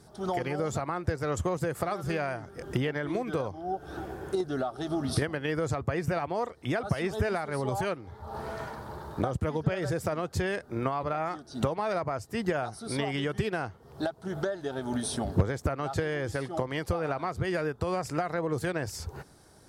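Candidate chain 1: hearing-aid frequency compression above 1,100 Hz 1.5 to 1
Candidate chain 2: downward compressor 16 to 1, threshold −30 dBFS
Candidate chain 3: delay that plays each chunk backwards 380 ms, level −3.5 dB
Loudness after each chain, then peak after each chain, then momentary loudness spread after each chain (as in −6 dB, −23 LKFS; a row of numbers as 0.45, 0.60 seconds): −32.0, −36.0, −30.5 LKFS; −14.0, −18.5, −13.5 dBFS; 6, 4, 5 LU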